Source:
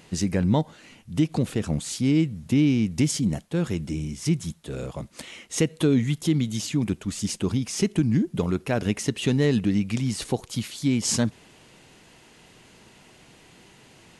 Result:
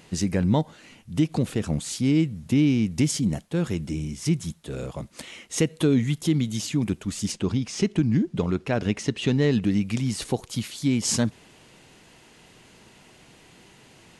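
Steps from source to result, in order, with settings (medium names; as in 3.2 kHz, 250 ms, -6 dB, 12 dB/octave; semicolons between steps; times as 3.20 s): 7.32–9.63 s: low-pass 6.2 kHz 12 dB/octave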